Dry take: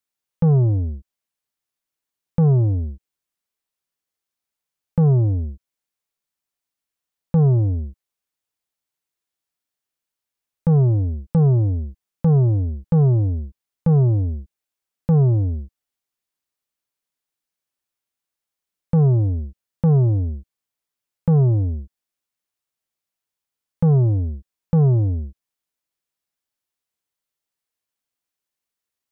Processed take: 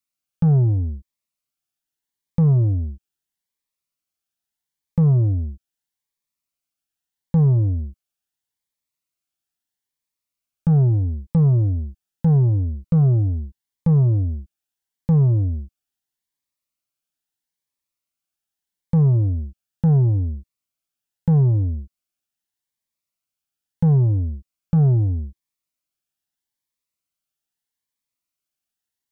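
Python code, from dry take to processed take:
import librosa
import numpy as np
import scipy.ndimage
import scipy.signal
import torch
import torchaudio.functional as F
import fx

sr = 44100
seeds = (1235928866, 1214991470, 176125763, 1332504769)

y = fx.tracing_dist(x, sr, depth_ms=0.038)
y = fx.peak_eq(y, sr, hz=450.0, db=-5.0, octaves=0.66)
y = fx.notch_cascade(y, sr, direction='rising', hz=0.78)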